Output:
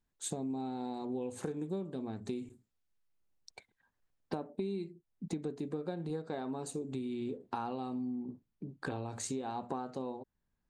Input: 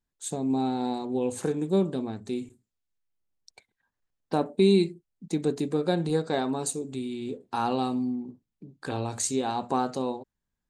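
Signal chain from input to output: treble shelf 3.7 kHz -6 dB, from 4.35 s -12 dB; compression 10:1, threshold -37 dBFS, peak gain reduction 20.5 dB; trim +2.5 dB

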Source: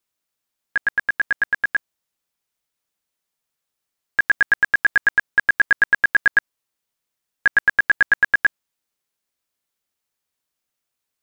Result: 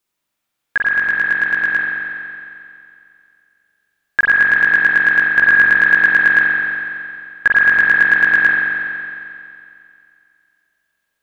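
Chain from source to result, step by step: spring tank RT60 2.5 s, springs 42 ms, chirp 30 ms, DRR -4 dB; trim +3 dB

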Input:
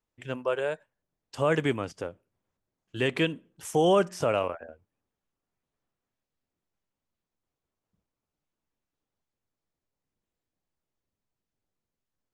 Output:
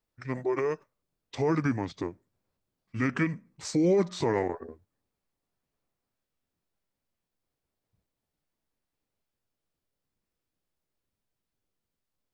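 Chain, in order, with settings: in parallel at +1 dB: peak limiter -21.5 dBFS, peak gain reduction 10 dB; on the sum: formant shift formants -6 st; trim -4.5 dB

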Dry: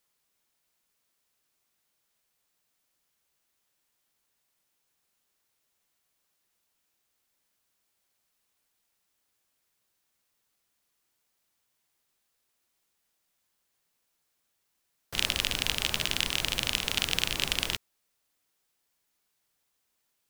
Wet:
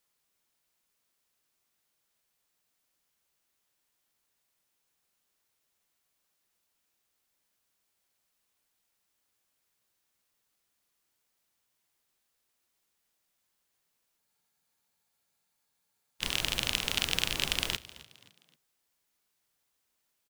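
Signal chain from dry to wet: frequency-shifting echo 263 ms, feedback 40%, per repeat +46 Hz, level -19 dB; spectral freeze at 14.21 s, 2.01 s; trim -1.5 dB

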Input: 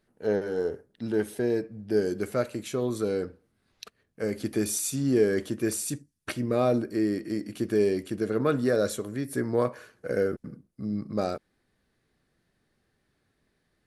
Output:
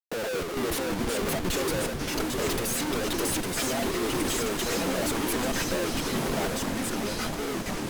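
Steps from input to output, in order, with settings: coarse spectral quantiser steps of 15 dB; high-pass 340 Hz 12 dB/octave; reverb removal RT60 0.87 s; dynamic bell 620 Hz, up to +6 dB, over -42 dBFS, Q 1.5; compression 16:1, threshold -37 dBFS, peak gain reduction 20.5 dB; waveshaping leveller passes 2; transient shaper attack -2 dB, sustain +8 dB; time stretch by phase-locked vocoder 0.62×; Schmitt trigger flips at -48 dBFS; echo that smears into a reverb 1052 ms, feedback 58%, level -8.5 dB; ever faster or slower copies 202 ms, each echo -4 st, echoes 3; speed mistake 44.1 kHz file played as 48 kHz; trim +6.5 dB

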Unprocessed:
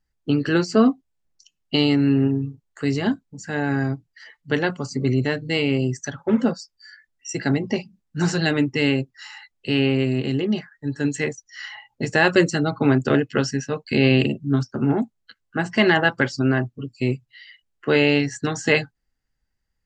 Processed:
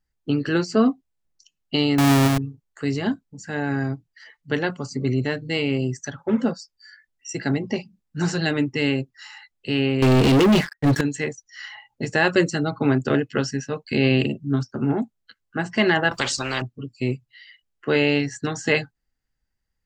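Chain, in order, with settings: 1.98–2.38 s: square wave that keeps the level; 10.02–11.01 s: waveshaping leveller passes 5; 16.11–16.62 s: spectrum-flattening compressor 4:1; trim -2 dB

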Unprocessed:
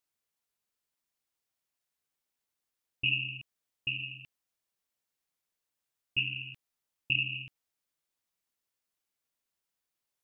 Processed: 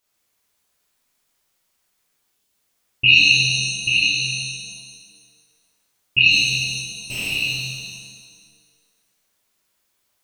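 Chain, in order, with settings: 2.29–2.50 s: spectral selection erased 480–2500 Hz; dynamic bell 2.7 kHz, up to +3 dB, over -36 dBFS; 6.31–7.32 s: valve stage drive 39 dB, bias 0.3; pitch-shifted reverb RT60 1.6 s, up +7 st, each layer -8 dB, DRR -7 dB; trim +9 dB

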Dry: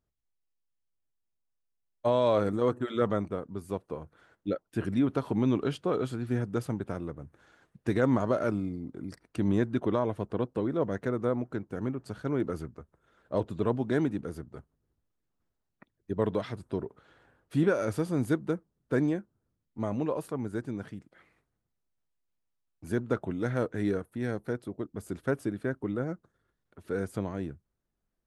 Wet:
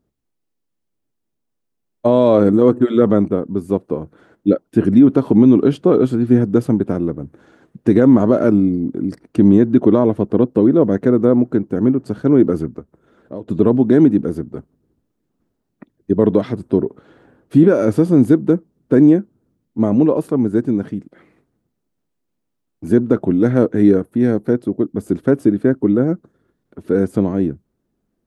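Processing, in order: 12.79–13.48 s: compression 2.5:1, threshold -50 dBFS, peak gain reduction 18 dB; peaking EQ 270 Hz +14.5 dB 2.3 oct; loudness maximiser +6.5 dB; trim -1 dB

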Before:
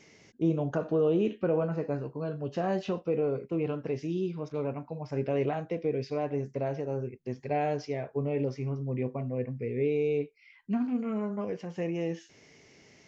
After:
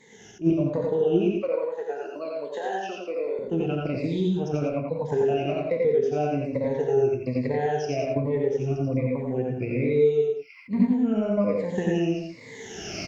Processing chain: drifting ripple filter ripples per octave 1, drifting -1.2 Hz, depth 19 dB; recorder AGC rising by 22 dB/s; dynamic bell 1.3 kHz, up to -7 dB, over -46 dBFS, Q 1.7; transient shaper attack +3 dB, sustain -4 dB; 1.32–3.39 s: Bessel high-pass 570 Hz, order 4; delay 88 ms -4 dB; reverberation, pre-delay 3 ms, DRR 2 dB; attacks held to a fixed rise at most 350 dB/s; trim -2.5 dB

